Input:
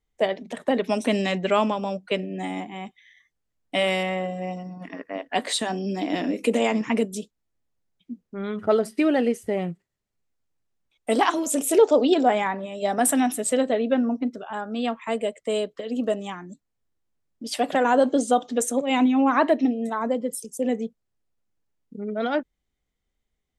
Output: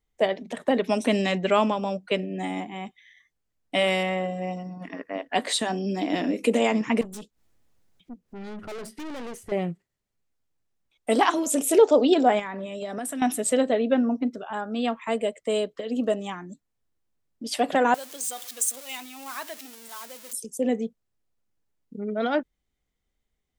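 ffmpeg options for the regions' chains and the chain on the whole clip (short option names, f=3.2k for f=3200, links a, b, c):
-filter_complex "[0:a]asettb=1/sr,asplit=3[a][b][c];[a]atrim=end=7.014[d];[b]atrim=start=7.01:end=9.52,asetpts=PTS-STARTPTS,afade=t=in:d=0.004:c=qsin,afade=t=out:st=2.506:d=0.004:c=qsin,aeval=exprs='(tanh(56.2*val(0)+0.4)-tanh(0.4))/56.2':c=same,acompressor=mode=upward:threshold=-51dB:ratio=2.5:attack=3.2:release=140:knee=2.83:detection=peak[e];[c]atrim=start=9.516[f];[d][e]acrossfade=d=0.004:c1=hsin:c2=qsin[g];[g][f]acrossfade=d=0.004:c1=qsin:c2=hsin,asettb=1/sr,asplit=3[h][i][j];[h]atrim=end=12.394[k];[i]atrim=start=12.39:end=13.22,asetpts=PTS-STARTPTS,afade=t=in:d=0.004:c=qsin,afade=t=out:st=0.826:d=0.004:c=qsin,equalizer=f=830:t=o:w=0.24:g=-10,acompressor=threshold=-28dB:ratio=12:attack=3.2:release=140:knee=1:detection=peak[l];[j]atrim=start=13.216[m];[k][l]acrossfade=d=0.004:c1=hsin:c2=qsin[n];[n][m]acrossfade=d=0.004:c1=qsin:c2=hsin,asettb=1/sr,asplit=3[o][p][q];[o]atrim=end=17.944[r];[p]atrim=start=17.94:end=20.33,asetpts=PTS-STARTPTS,afade=t=in:d=0.004:c=qsin,afade=t=out:st=2.386:d=0.004:c=qsin,aeval=exprs='val(0)+0.5*0.0398*sgn(val(0))':c=same,aderivative[s];[q]atrim=start=20.326[t];[r][s]acrossfade=d=0.004:c1=hsin:c2=qsin[u];[u][t]acrossfade=d=0.004:c1=qsin:c2=hsin"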